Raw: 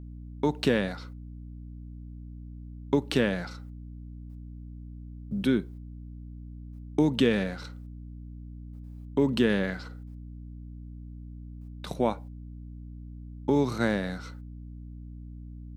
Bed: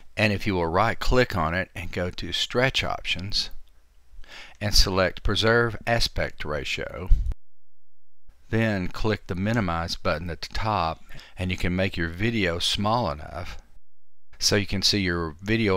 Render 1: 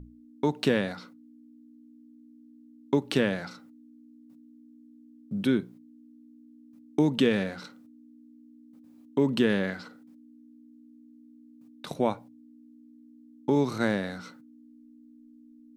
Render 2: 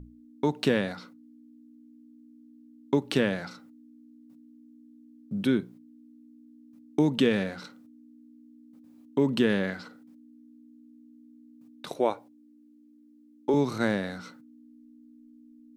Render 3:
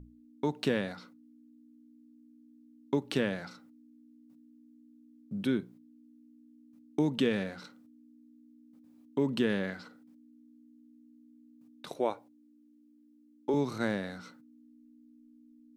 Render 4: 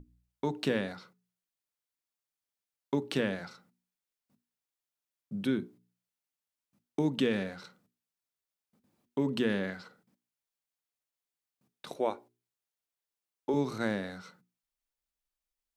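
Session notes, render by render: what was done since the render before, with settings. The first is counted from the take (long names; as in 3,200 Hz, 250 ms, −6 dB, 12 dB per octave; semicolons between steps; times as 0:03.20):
mains-hum notches 60/120/180 Hz
0:11.90–0:13.54: low shelf with overshoot 260 Hz −9.5 dB, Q 1.5
level −5 dB
mains-hum notches 60/120/180/240/300/360/420 Hz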